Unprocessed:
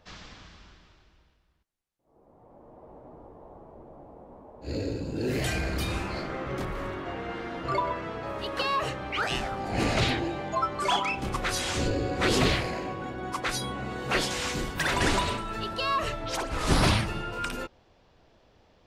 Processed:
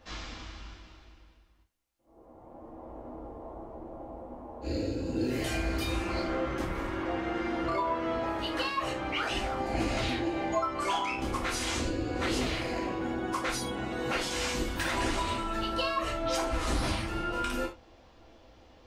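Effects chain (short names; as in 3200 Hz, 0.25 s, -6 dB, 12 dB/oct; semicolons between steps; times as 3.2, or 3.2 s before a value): compressor 4:1, threshold -34 dBFS, peak gain reduction 13.5 dB; reverb, pre-delay 3 ms, DRR -2.5 dB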